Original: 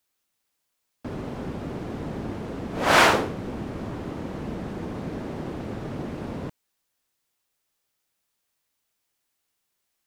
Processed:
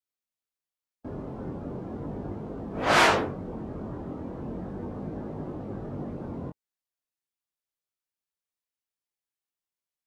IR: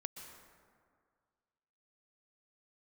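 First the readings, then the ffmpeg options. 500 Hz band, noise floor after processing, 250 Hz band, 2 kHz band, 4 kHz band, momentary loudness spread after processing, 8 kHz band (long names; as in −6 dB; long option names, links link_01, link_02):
−2.5 dB, below −85 dBFS, −3.0 dB, −3.5 dB, −3.5 dB, 16 LU, −4.5 dB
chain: -af "afftdn=noise_reduction=14:noise_floor=-40,flanger=delay=19.5:depth=3.6:speed=0.37"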